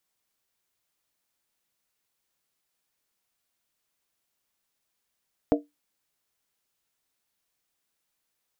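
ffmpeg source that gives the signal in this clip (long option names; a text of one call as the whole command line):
ffmpeg -f lavfi -i "aevalsrc='0.158*pow(10,-3*t/0.19)*sin(2*PI*293*t)+0.119*pow(10,-3*t/0.15)*sin(2*PI*467*t)+0.0891*pow(10,-3*t/0.13)*sin(2*PI*625.8*t)+0.0668*pow(10,-3*t/0.125)*sin(2*PI*672.7*t)':duration=0.63:sample_rate=44100" out.wav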